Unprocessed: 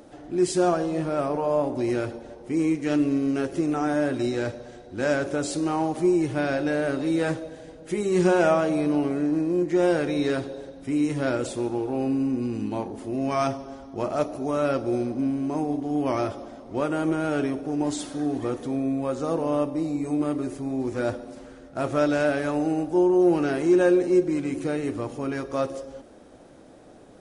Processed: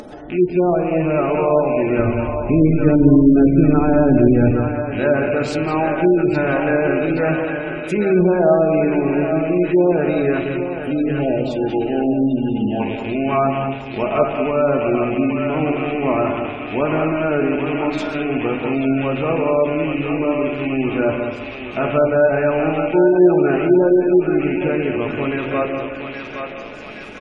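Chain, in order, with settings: rattle on loud lows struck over -40 dBFS, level -27 dBFS; low-pass that closes with the level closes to 740 Hz, closed at -16.5 dBFS; 1.99–4.51 s: RIAA curve playback; reverberation RT60 1.2 s, pre-delay 5 ms, DRR 6 dB; 10.78–12.80 s: spectral selection erased 880–2700 Hz; delay 193 ms -7.5 dB; upward compressor, threshold -36 dBFS; thinning echo 818 ms, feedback 73%, high-pass 880 Hz, level -4 dB; spectral gate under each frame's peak -30 dB strong; trim +6 dB

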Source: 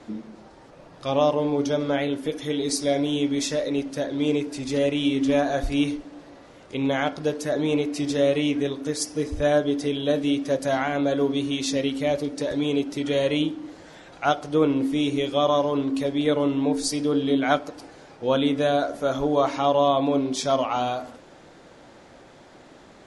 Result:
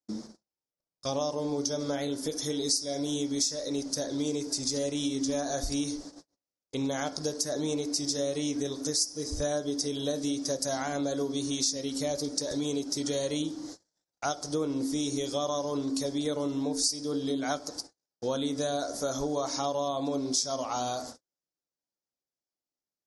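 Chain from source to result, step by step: gate -40 dBFS, range -49 dB; resonant high shelf 3.8 kHz +12 dB, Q 3; compression 4:1, threshold -25 dBFS, peak gain reduction 15 dB; trim -3 dB

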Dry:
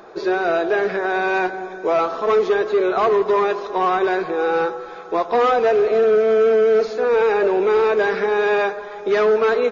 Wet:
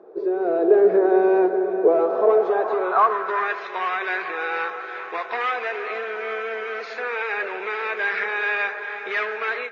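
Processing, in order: compression, threshold -18 dBFS, peak gain reduction 5.5 dB; feedback echo behind a low-pass 411 ms, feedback 77%, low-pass 3 kHz, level -12.5 dB; level rider gain up to 11.5 dB; band-pass sweep 420 Hz -> 2.1 kHz, 1.98–3.67 s

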